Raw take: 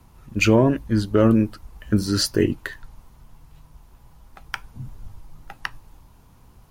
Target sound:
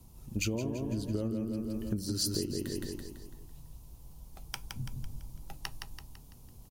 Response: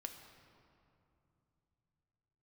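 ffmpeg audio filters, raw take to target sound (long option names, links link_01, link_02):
-filter_complex "[0:a]equalizer=frequency=1600:width_type=o:width=1.7:gain=-15,asplit=2[link_01][link_02];[link_02]aecho=0:1:167|334|501|668|835|1002:0.562|0.259|0.119|0.0547|0.0252|0.0116[link_03];[link_01][link_03]amix=inputs=2:normalize=0,acompressor=threshold=-27dB:ratio=12,highshelf=frequency=3900:gain=7,volume=-3dB"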